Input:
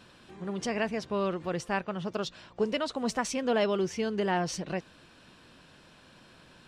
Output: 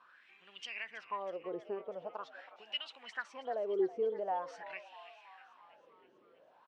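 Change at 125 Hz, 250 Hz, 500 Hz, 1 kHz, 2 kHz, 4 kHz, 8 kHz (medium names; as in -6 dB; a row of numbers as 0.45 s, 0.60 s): under -25 dB, -15.0 dB, -7.0 dB, -7.0 dB, -8.5 dB, -6.0 dB, under -20 dB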